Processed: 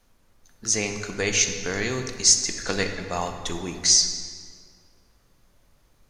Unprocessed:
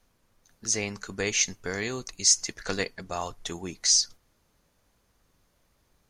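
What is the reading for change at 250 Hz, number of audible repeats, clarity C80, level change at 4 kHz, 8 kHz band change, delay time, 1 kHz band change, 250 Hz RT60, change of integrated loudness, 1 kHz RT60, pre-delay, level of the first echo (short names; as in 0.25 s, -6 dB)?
+5.0 dB, none, 8.0 dB, +4.5 dB, +4.0 dB, none, +4.5 dB, 2.2 s, +4.0 dB, 1.9 s, 15 ms, none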